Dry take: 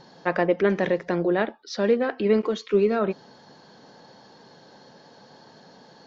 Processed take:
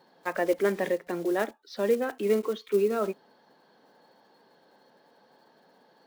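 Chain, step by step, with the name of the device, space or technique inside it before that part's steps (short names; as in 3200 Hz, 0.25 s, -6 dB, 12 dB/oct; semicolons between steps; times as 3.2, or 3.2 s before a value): spectral noise reduction 6 dB; early digital voice recorder (BPF 250–3400 Hz; block floating point 5-bit); gain -3 dB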